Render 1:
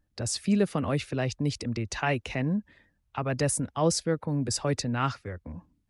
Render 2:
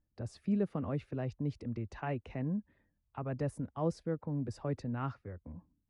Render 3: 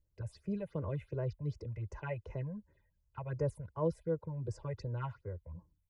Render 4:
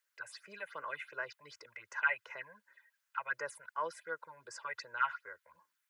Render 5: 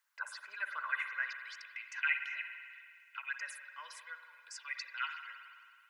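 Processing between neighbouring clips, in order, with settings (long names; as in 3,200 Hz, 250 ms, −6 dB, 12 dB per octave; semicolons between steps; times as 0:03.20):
drawn EQ curve 250 Hz 0 dB, 1,100 Hz −4 dB, 7,400 Hz −22 dB; level −7 dB
comb filter 2 ms, depth 92%; all-pass phaser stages 6, 2.7 Hz, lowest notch 310–3,900 Hz; level −2 dB
high-pass with resonance 1,500 Hz, resonance Q 3.3; level +9 dB
high-pass filter sweep 940 Hz → 2,500 Hz, 0:00.19–0:01.54; spring reverb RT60 2.2 s, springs 52 ms, chirp 40 ms, DRR 6.5 dB; level +1 dB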